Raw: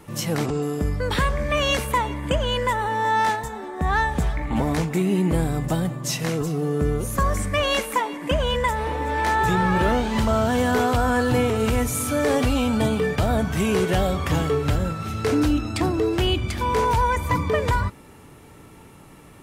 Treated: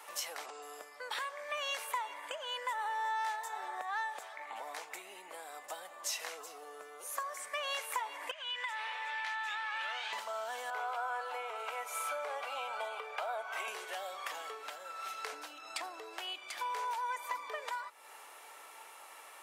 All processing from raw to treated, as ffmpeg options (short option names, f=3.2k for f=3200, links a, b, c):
-filter_complex "[0:a]asettb=1/sr,asplit=3[a][b][c];[a]atrim=end=8.314[d];[b]atrim=start=8.31:end=10.13,asetpts=PTS-STARTPTS,afade=t=in:d=0.004:c=qsin,afade=t=out:st=1.816:d=0.004:c=qsin,bandpass=f=2.7k:t=q:w=1.5,acompressor=threshold=-34dB:ratio=3:attack=3.2:release=140:knee=1:detection=peak[e];[c]atrim=start=10.126[f];[d][e]acrossfade=d=0.004:c1=hsin:c2=qsin[g];[g][f]acrossfade=d=0.004:c1=qsin:c2=hsin,asettb=1/sr,asplit=3[h][i][j];[h]atrim=end=10.704[k];[i]atrim=start=10.7:end=13.68,asetpts=PTS-STARTPTS,afade=t=in:d=0.004:c=qsin,afade=t=out:st=2.976:d=0.004:c=qsin,asuperstop=centerf=1800:order=4:qfactor=7.9,acrossover=split=390 2700:gain=0.0891 1 0.224[l][m][n];[l][m][n]amix=inputs=3:normalize=0[o];[j]atrim=start=13.676[p];[k][o]acrossfade=d=0.004:c1=hsin:c2=qsin[q];[q][p]acrossfade=d=0.004:c1=qsin:c2=hsin,acompressor=threshold=-33dB:ratio=6,highpass=f=650:w=0.5412,highpass=f=650:w=1.3066"